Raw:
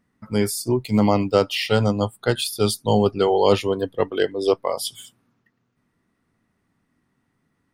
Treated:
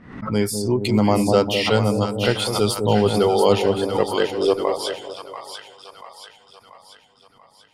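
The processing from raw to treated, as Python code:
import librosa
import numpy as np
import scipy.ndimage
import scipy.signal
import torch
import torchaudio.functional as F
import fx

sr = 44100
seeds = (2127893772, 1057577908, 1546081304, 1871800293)

y = fx.env_lowpass(x, sr, base_hz=2800.0, full_db=-17.0)
y = fx.echo_split(y, sr, split_hz=780.0, low_ms=200, high_ms=686, feedback_pct=52, wet_db=-7.0)
y = fx.pre_swell(y, sr, db_per_s=83.0)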